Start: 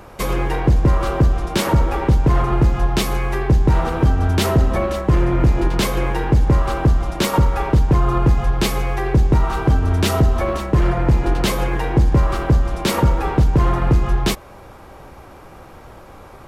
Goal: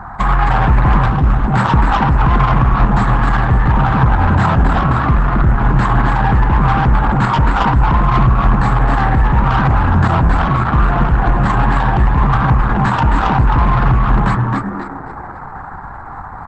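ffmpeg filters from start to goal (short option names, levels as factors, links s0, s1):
-filter_complex "[0:a]acompressor=threshold=0.178:ratio=6,firequalizer=gain_entry='entry(140,0);entry(210,2);entry(490,-26);entry(730,11);entry(1700,9);entry(2800,-24);entry(4100,-11);entry(6000,-30);entry(9500,10);entry(14000,-13)':delay=0.05:min_phase=1,asplit=6[s0][s1][s2][s3][s4][s5];[s1]adelay=267,afreqshift=77,volume=0.631[s6];[s2]adelay=534,afreqshift=154,volume=0.24[s7];[s3]adelay=801,afreqshift=231,volume=0.0912[s8];[s4]adelay=1068,afreqshift=308,volume=0.0347[s9];[s5]adelay=1335,afreqshift=385,volume=0.0132[s10];[s0][s6][s7][s8][s9][s10]amix=inputs=6:normalize=0,asoftclip=type=tanh:threshold=0.224,asettb=1/sr,asplit=3[s11][s12][s13];[s11]atrim=end=1.064[s14];[s12]atrim=start=1.06:end=1.54,asetpts=PTS-STARTPTS,afade=t=in:d=0.004:c=qsin,afade=t=out:st=0.476:d=0.004:c=qsin,acrossover=split=360[s15][s16];[s16]acompressor=threshold=0.0316:ratio=2[s17];[s15][s17]amix=inputs=2:normalize=0[s18];[s13]atrim=start=1.536[s19];[s14][s18]acrossfade=d=0.004:c1=hsin:c2=qsin[s20];[s20][s19]acrossfade=d=0.004:c1=qsin:c2=hsin,asettb=1/sr,asplit=3[s21][s22][s23];[s21]atrim=end=5.934[s24];[s22]atrim=start=5.93:end=6.99,asetpts=PTS-STARTPTS,afade=t=in:d=0.004:c=qsin,afade=t=out:st=1.056:d=0.004:c=qsin,aeval=exprs='val(0)+0.01*(sin(2*PI*60*n/s)+sin(2*PI*2*60*n/s)/2+sin(2*PI*3*60*n/s)/3+sin(2*PI*4*60*n/s)/4+sin(2*PI*5*60*n/s)/5)':c=same[s25];[s23]atrim=start=6.986[s26];[s24][s25]acrossfade=d=0.004:c1=hsin:c2=qsin[s27];[s27][s26]acrossfade=d=0.004:c1=qsin:c2=hsin,lowshelf=f=180:g=6.5,volume=1.68" -ar 48000 -c:a libopus -b:a 10k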